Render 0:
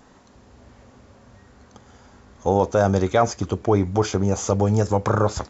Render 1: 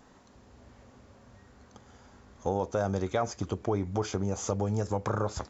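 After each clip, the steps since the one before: compressor 2:1, threshold -23 dBFS, peak gain reduction 6.5 dB; gain -5.5 dB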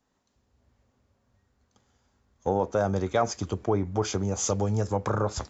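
three-band expander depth 70%; gain +3 dB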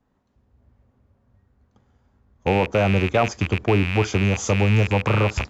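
rattling part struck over -39 dBFS, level -18 dBFS; tone controls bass +5 dB, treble -7 dB; mismatched tape noise reduction decoder only; gain +4.5 dB

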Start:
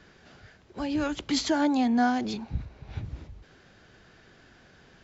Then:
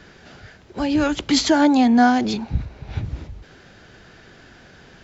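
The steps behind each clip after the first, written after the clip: notch 1100 Hz, Q 26; gain +9 dB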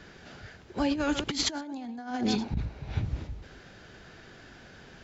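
reverse delay 0.124 s, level -12.5 dB; negative-ratio compressor -21 dBFS, ratio -0.5; gain -8 dB

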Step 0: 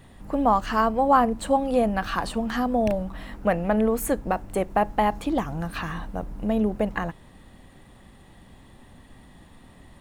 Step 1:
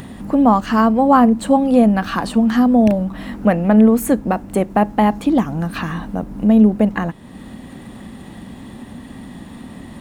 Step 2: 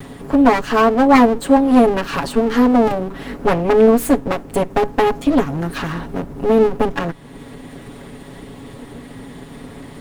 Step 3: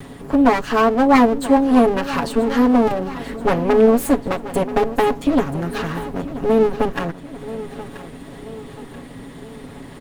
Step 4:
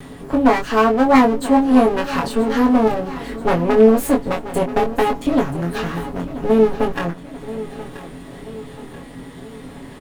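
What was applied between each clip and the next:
HPF 69 Hz 6 dB/oct; bell 230 Hz +10 dB 0.93 oct; in parallel at -1 dB: upward compressor, threshold -23 dBFS; on the sum: gain -1 dB
minimum comb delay 7.2 ms; gain +1.5 dB
feedback echo 0.982 s, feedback 50%, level -14.5 dB; gain -2 dB
doubler 23 ms -4 dB; gain -1 dB

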